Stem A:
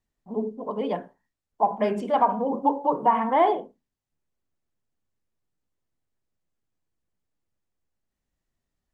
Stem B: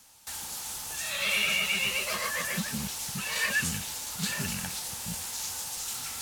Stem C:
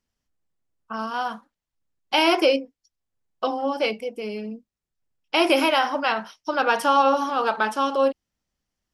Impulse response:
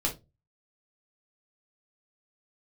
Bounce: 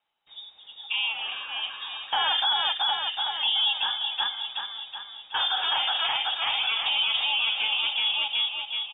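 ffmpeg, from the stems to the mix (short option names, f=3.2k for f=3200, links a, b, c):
-filter_complex "[0:a]volume=-15.5dB,asplit=2[a][b];[1:a]highpass=130,volume=-17.5dB,asplit=2[c][d];[d]volume=-8.5dB[e];[2:a]highpass=f=330:w=0.5412,highpass=f=330:w=1.3066,volume=3dB,asplit=3[f][g][h];[g]volume=-15dB[i];[h]volume=-9.5dB[j];[b]apad=whole_len=393905[k];[f][k]sidechaingate=range=-33dB:threshold=-58dB:ratio=16:detection=peak[l];[3:a]atrim=start_sample=2205[m];[i][m]afir=irnorm=-1:irlink=0[n];[e][j]amix=inputs=2:normalize=0,aecho=0:1:374|748|1122|1496|1870|2244|2618|2992:1|0.54|0.292|0.157|0.085|0.0459|0.0248|0.0134[o];[a][c][l][n][o]amix=inputs=5:normalize=0,lowpass=f=3.3k:t=q:w=0.5098,lowpass=f=3.3k:t=q:w=0.6013,lowpass=f=3.3k:t=q:w=0.9,lowpass=f=3.3k:t=q:w=2.563,afreqshift=-3900,equalizer=f=830:t=o:w=0.23:g=13,alimiter=limit=-16.5dB:level=0:latency=1:release=41"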